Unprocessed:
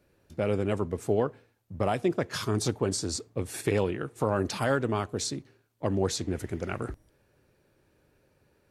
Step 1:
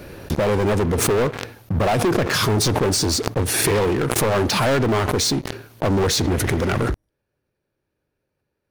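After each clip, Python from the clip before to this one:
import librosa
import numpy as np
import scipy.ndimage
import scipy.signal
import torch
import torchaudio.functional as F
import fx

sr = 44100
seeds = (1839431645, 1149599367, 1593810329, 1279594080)

y = fx.peak_eq(x, sr, hz=7600.0, db=-7.5, octaves=0.33)
y = fx.leveller(y, sr, passes=5)
y = fx.pre_swell(y, sr, db_per_s=29.0)
y = y * 10.0 ** (-1.5 / 20.0)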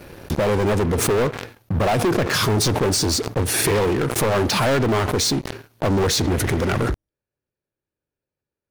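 y = fx.leveller(x, sr, passes=2)
y = y * 10.0 ** (-7.5 / 20.0)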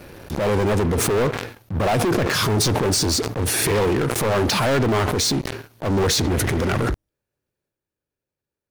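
y = fx.transient(x, sr, attack_db=-7, sustain_db=5)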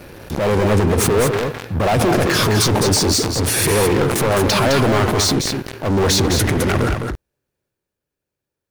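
y = x + 10.0 ** (-5.5 / 20.0) * np.pad(x, (int(210 * sr / 1000.0), 0))[:len(x)]
y = y * 10.0 ** (3.0 / 20.0)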